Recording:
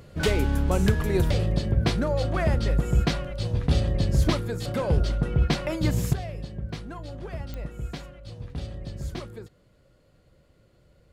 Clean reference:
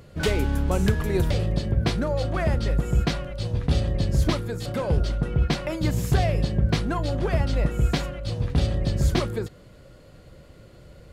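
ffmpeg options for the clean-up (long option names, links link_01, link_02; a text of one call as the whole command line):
ffmpeg -i in.wav -af "adeclick=threshold=4,asetnsamples=nb_out_samples=441:pad=0,asendcmd='6.13 volume volume 12dB',volume=0dB" out.wav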